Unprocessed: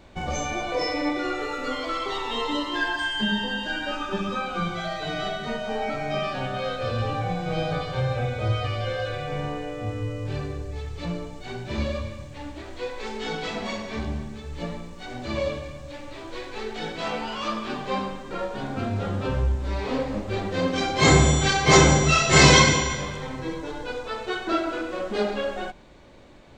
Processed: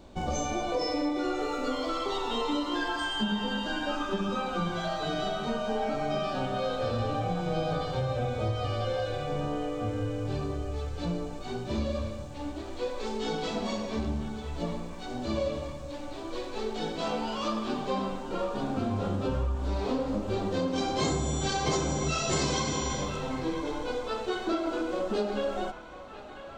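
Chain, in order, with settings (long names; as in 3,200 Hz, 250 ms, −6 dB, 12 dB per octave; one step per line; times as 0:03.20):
octave-band graphic EQ 125/250/2,000 Hz −4/+3/−10 dB
downward compressor 12 to 1, threshold −25 dBFS, peak gain reduction 15 dB
delay with a band-pass on its return 998 ms, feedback 55%, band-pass 1,400 Hz, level −9 dB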